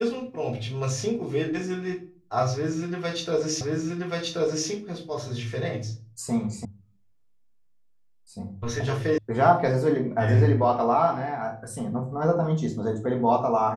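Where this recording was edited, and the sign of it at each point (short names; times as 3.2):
3.61 repeat of the last 1.08 s
6.65 sound cut off
9.18 sound cut off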